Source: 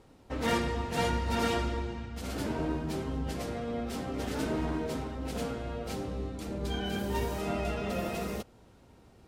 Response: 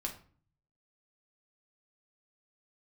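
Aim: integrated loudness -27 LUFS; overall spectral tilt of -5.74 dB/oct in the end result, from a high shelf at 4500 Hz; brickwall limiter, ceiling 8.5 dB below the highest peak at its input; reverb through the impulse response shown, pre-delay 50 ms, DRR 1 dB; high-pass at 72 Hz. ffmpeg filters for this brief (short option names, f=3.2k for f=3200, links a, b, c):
-filter_complex "[0:a]highpass=72,highshelf=f=4.5k:g=-6,alimiter=level_in=2dB:limit=-24dB:level=0:latency=1,volume=-2dB,asplit=2[a][b];[1:a]atrim=start_sample=2205,adelay=50[c];[b][c]afir=irnorm=-1:irlink=0,volume=-1.5dB[d];[a][d]amix=inputs=2:normalize=0,volume=6dB"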